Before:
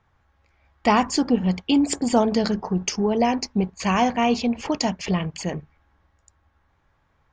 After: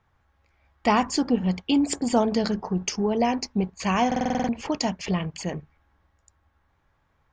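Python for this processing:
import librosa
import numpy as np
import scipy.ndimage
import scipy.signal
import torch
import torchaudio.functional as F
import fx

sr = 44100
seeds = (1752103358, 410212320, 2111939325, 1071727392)

y = fx.buffer_glitch(x, sr, at_s=(4.07,), block=2048, repeats=8)
y = F.gain(torch.from_numpy(y), -2.5).numpy()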